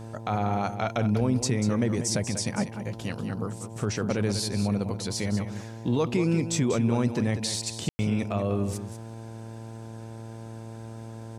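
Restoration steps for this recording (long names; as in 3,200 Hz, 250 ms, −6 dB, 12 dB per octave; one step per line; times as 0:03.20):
click removal
hum removal 112.7 Hz, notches 9
ambience match 0:07.89–0:07.99
echo removal 192 ms −10 dB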